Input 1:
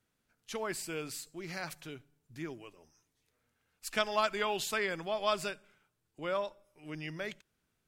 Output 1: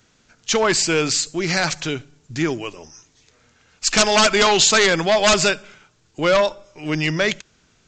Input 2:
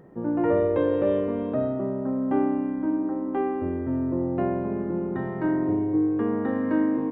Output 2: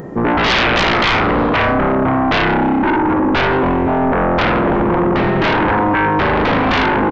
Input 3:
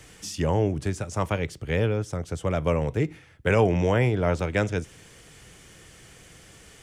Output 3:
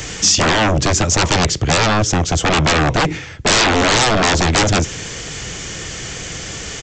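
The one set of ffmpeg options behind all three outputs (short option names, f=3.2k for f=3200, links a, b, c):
-af "aresample=16000,aeval=exprs='0.355*sin(PI/2*8.91*val(0)/0.355)':c=same,aresample=44100,highshelf=f=5.3k:g=10,volume=-2.5dB"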